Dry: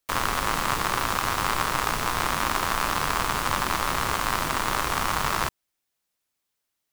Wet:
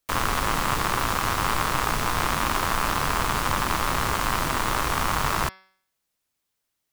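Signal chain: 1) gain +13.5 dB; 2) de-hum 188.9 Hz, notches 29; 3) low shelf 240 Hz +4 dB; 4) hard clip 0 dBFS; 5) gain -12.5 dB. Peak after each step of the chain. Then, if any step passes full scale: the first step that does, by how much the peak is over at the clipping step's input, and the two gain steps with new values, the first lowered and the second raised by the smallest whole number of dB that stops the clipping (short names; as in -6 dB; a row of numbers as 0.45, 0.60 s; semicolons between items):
+6.5, +6.5, +6.5, 0.0, -12.5 dBFS; step 1, 6.5 dB; step 1 +6.5 dB, step 5 -5.5 dB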